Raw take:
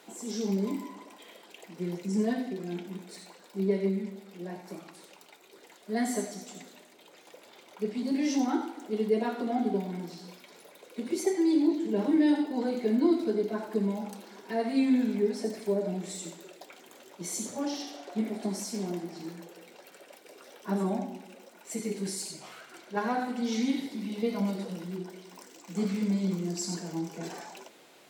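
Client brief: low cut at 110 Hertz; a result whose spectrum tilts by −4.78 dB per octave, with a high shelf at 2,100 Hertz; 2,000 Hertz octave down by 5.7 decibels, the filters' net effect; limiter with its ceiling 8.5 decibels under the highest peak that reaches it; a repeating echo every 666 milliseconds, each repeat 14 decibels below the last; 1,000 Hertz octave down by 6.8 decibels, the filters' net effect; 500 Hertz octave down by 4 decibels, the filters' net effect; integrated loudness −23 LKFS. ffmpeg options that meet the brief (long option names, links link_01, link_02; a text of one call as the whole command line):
ffmpeg -i in.wav -af "highpass=110,equalizer=frequency=500:width_type=o:gain=-4,equalizer=frequency=1000:width_type=o:gain=-7.5,equalizer=frequency=2000:width_type=o:gain=-6.5,highshelf=frequency=2100:gain=3.5,alimiter=level_in=0.5dB:limit=-24dB:level=0:latency=1,volume=-0.5dB,aecho=1:1:666|1332:0.2|0.0399,volume=12dB" out.wav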